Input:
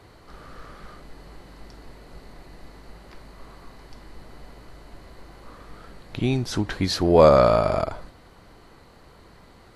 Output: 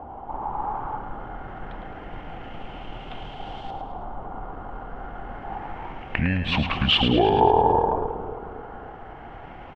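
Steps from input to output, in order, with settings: peaking EQ 1.1 kHz +11.5 dB 0.34 oct; compression 3:1, threshold -28 dBFS, peak gain reduction 15.5 dB; pitch shift -6 st; LFO low-pass saw up 0.27 Hz 910–3700 Hz; two-band feedback delay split 610 Hz, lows 269 ms, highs 107 ms, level -7.5 dB; trim +6.5 dB

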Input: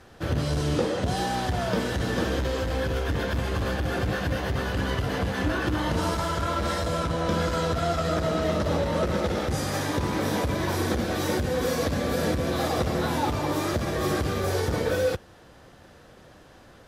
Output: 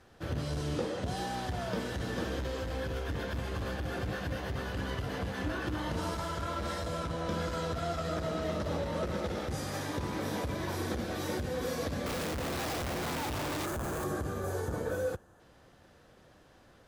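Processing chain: 12.06–14.04 s: Schmitt trigger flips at -41.5 dBFS; 13.66–15.40 s: time-frequency box 1.8–6 kHz -9 dB; trim -8.5 dB

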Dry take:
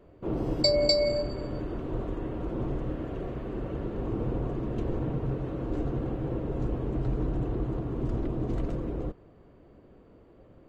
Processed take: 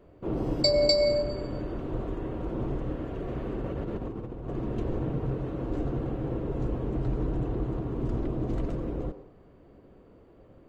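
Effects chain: 3.28–4.56 s: compressor with a negative ratio -33 dBFS, ratio -0.5; on a send: reverberation, pre-delay 77 ms, DRR 12.5 dB

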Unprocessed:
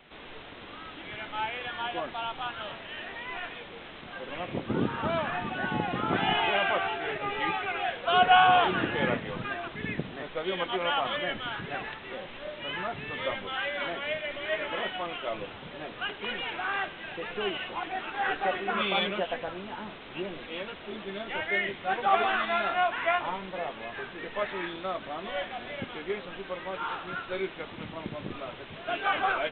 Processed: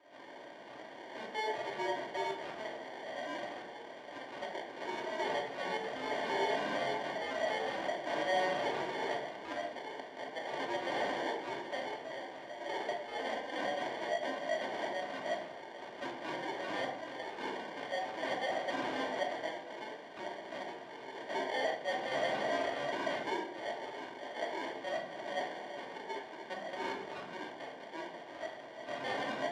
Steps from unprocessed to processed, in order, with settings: band-stop 2.2 kHz, Q 11; in parallel at -1 dB: peak limiter -21 dBFS, peak gain reduction 11.5 dB; on the sum: LFO band-pass square 2.6 Hz 990–2400 Hz; sample-rate reducer 1.3 kHz, jitter 0%; hard clipper -29.5 dBFS, distortion -8 dB; band-pass 570–3400 Hz; simulated room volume 990 m³, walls furnished, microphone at 2.7 m

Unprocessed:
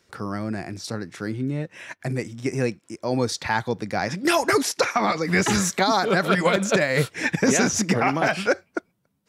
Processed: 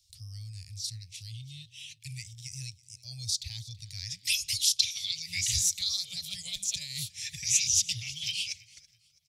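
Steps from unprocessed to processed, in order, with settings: inverse Chebyshev band-stop 220–1600 Hz, stop band 50 dB; feedback delay 329 ms, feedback 43%, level -21 dB; sweeping bell 0.31 Hz 760–3300 Hz +14 dB

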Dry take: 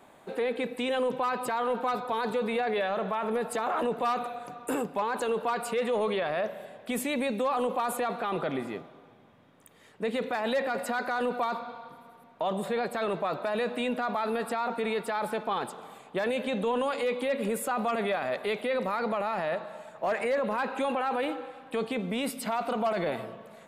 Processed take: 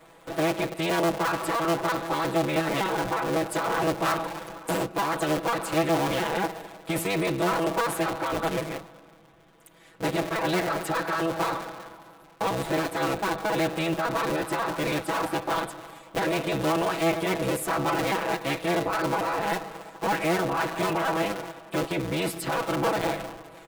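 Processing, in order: cycle switcher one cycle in 3, inverted; comb 6.1 ms, depth 96%

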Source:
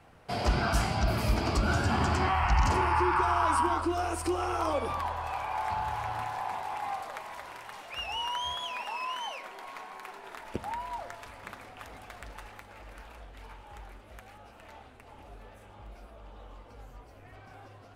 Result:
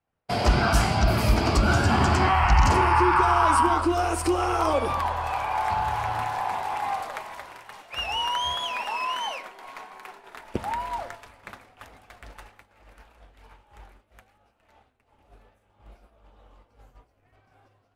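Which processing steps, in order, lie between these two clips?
expander -38 dBFS; trim +6.5 dB

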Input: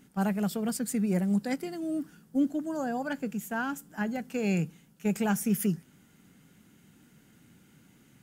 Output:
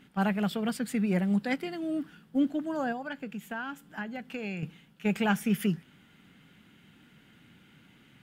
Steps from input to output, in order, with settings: FFT filter 440 Hz 0 dB, 3.3 kHz +8 dB, 6.2 kHz -8 dB; 2.92–4.63 s: compression 3:1, threshold -36 dBFS, peak gain reduction 10.5 dB

